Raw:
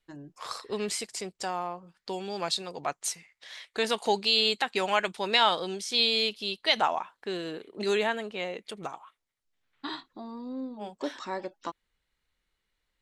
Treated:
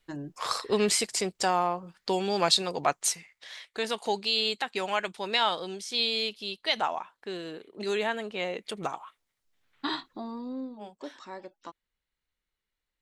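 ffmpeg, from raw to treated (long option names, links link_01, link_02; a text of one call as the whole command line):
ffmpeg -i in.wav -af "volume=15dB,afade=type=out:start_time=2.71:duration=1.07:silence=0.316228,afade=type=in:start_time=7.93:duration=1.03:silence=0.398107,afade=type=out:start_time=10.05:duration=0.91:silence=0.237137" out.wav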